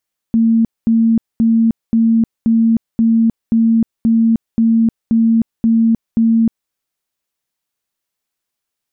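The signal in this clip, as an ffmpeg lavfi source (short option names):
-f lavfi -i "aevalsrc='0.376*sin(2*PI*227*mod(t,0.53))*lt(mod(t,0.53),70/227)':d=6.36:s=44100"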